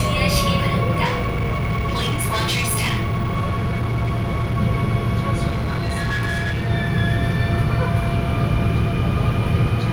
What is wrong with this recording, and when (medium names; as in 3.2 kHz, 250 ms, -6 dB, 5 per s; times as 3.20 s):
1.04–4.57 s: clipped -17.5 dBFS
5.47–6.71 s: clipped -19 dBFS